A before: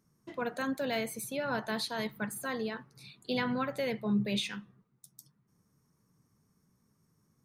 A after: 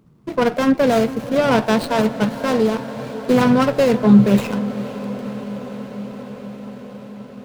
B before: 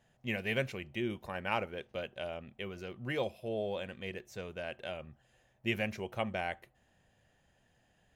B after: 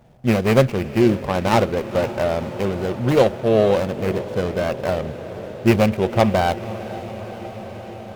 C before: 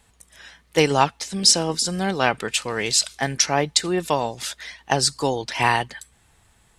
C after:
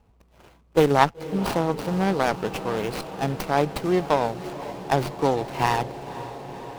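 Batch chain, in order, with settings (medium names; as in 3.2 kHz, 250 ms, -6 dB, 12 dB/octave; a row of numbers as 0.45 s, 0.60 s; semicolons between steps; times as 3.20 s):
median filter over 25 samples; echo that smears into a reverb 510 ms, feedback 77%, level -14.5 dB; sliding maximum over 5 samples; peak normalisation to -2 dBFS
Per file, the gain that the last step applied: +19.0 dB, +20.5 dB, +2.0 dB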